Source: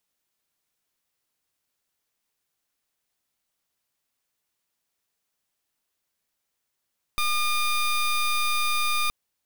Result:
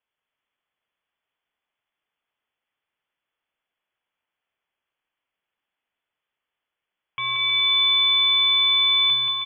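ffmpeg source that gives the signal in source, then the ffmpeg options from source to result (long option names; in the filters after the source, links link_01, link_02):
-f lavfi -i "aevalsrc='0.0668*(2*lt(mod(1210*t,1),0.17)-1)':duration=1.92:sample_rate=44100"
-af "aecho=1:1:180|315|416.2|492.2|549.1:0.631|0.398|0.251|0.158|0.1,lowpass=frequency=3000:width_type=q:width=0.5098,lowpass=frequency=3000:width_type=q:width=0.6013,lowpass=frequency=3000:width_type=q:width=0.9,lowpass=frequency=3000:width_type=q:width=2.563,afreqshift=-3500"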